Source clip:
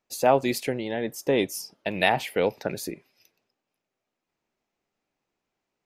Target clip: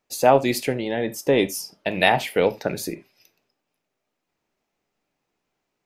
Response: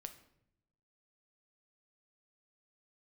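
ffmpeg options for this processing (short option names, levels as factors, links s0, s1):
-filter_complex "[0:a]asplit=2[s0][s1];[1:a]atrim=start_sample=2205,atrim=end_sample=3969[s2];[s1][s2]afir=irnorm=-1:irlink=0,volume=3.35[s3];[s0][s3]amix=inputs=2:normalize=0,volume=0.562"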